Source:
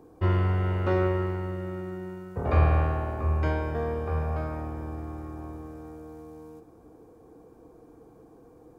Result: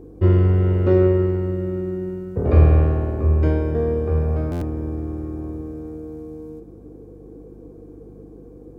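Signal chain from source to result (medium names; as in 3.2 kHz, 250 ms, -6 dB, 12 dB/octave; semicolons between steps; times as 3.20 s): resonant low shelf 600 Hz +9.5 dB, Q 1.5; mains buzz 50 Hz, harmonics 7, -45 dBFS; buffer glitch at 4.51 s, samples 512, times 8; trim -1 dB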